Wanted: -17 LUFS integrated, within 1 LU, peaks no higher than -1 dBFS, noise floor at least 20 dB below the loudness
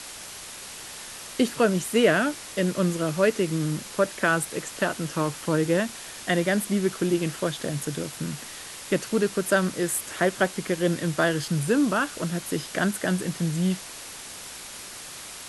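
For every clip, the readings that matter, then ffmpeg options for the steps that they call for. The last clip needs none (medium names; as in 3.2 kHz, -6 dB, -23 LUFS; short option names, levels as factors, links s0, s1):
noise floor -40 dBFS; noise floor target -46 dBFS; loudness -25.5 LUFS; peak level -8.0 dBFS; loudness target -17.0 LUFS
-> -af "afftdn=nr=6:nf=-40"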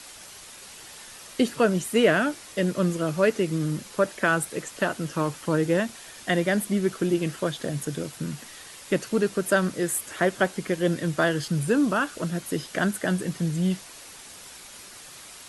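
noise floor -45 dBFS; noise floor target -46 dBFS
-> -af "afftdn=nr=6:nf=-45"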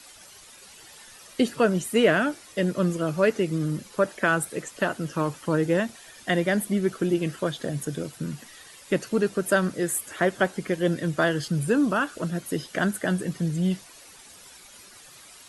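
noise floor -49 dBFS; loudness -26.0 LUFS; peak level -8.0 dBFS; loudness target -17.0 LUFS
-> -af "volume=2.82,alimiter=limit=0.891:level=0:latency=1"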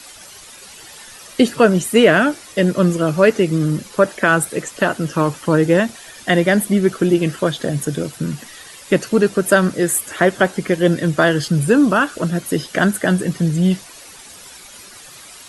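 loudness -17.0 LUFS; peak level -1.0 dBFS; noise floor -40 dBFS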